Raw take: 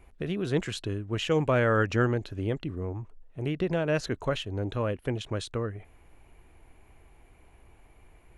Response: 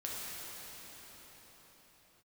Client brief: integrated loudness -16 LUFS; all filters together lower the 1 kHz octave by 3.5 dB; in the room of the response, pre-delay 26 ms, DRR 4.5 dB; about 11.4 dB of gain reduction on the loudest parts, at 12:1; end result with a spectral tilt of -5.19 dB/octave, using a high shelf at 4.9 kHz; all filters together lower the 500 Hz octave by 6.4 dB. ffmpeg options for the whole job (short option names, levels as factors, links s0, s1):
-filter_complex "[0:a]equalizer=f=500:t=o:g=-7,equalizer=f=1000:t=o:g=-4,highshelf=f=4900:g=7,acompressor=threshold=0.02:ratio=12,asplit=2[s0][s1];[1:a]atrim=start_sample=2205,adelay=26[s2];[s1][s2]afir=irnorm=-1:irlink=0,volume=0.422[s3];[s0][s3]amix=inputs=2:normalize=0,volume=13.3"